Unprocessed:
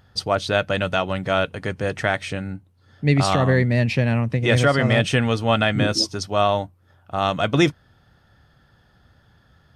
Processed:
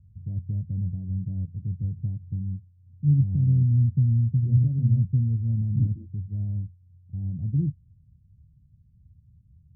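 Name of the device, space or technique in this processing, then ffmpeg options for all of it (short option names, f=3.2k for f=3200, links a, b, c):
the neighbour's flat through the wall: -af "lowpass=f=170:w=0.5412,lowpass=f=170:w=1.3066,equalizer=f=83:t=o:w=0.79:g=4.5"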